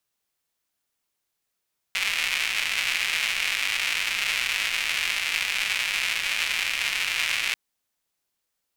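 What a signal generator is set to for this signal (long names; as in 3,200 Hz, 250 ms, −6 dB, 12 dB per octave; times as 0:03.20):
rain-like ticks over hiss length 5.59 s, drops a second 290, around 2,400 Hz, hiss −25 dB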